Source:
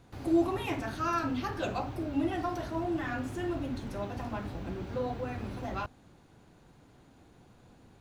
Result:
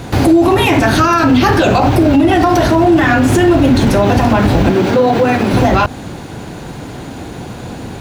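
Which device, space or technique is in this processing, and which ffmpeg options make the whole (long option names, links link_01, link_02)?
mastering chain: -filter_complex "[0:a]highpass=frequency=56:poles=1,equalizer=frequency=1200:width_type=o:width=0.35:gain=-3,acompressor=threshold=-34dB:ratio=2.5,alimiter=level_in=33.5dB:limit=-1dB:release=50:level=0:latency=1,asettb=1/sr,asplit=3[link_01][link_02][link_03];[link_01]atrim=end=4.704[link_04];[link_02]atrim=start=4.7:end=5.53,asetpts=PTS-STARTPTS,afade=type=in:duration=0.004:curve=qsin,afade=type=out:start_time=0.826:duration=0.004:curve=qsin,highpass=160[link_05];[link_03]atrim=start=5.526[link_06];[link_04][link_05]acrossfade=duration=0.004:curve1=hsin:curve2=qsin[link_07];[link_07][link_06]acrossfade=duration=0.004:curve1=qsin:curve2=hsin,volume=-1.5dB"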